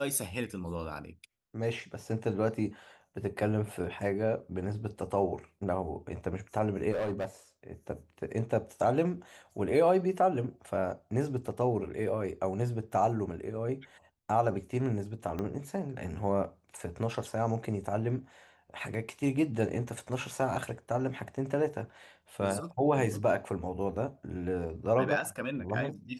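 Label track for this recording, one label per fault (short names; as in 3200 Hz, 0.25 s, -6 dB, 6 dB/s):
6.910000	7.250000	clipped -28.5 dBFS
15.390000	15.390000	pop -23 dBFS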